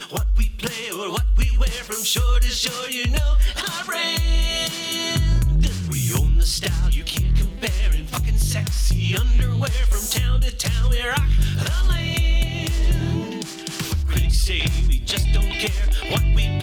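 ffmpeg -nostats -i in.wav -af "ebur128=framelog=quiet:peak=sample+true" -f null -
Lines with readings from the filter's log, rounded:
Integrated loudness:
  I:         -21.7 LUFS
  Threshold: -31.7 LUFS
Loudness range:
  LRA:         1.2 LU
  Threshold: -41.7 LUFS
  LRA low:   -22.4 LUFS
  LRA high:  -21.1 LUFS
Sample peak:
  Peak:       -9.0 dBFS
True peak:
  Peak:       -9.0 dBFS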